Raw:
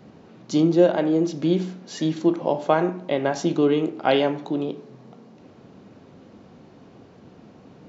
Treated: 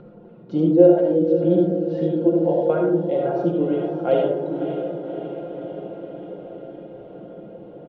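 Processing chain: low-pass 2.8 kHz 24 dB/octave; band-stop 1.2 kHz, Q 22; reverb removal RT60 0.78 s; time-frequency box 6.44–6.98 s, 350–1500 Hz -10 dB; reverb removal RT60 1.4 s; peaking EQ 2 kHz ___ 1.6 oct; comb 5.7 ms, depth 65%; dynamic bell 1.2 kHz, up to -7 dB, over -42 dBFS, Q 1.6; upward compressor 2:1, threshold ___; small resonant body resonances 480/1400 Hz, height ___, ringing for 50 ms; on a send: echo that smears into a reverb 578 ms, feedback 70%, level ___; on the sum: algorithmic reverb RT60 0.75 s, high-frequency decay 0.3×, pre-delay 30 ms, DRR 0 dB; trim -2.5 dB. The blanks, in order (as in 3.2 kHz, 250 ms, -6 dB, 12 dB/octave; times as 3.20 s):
-12.5 dB, -39 dBFS, 12 dB, -9 dB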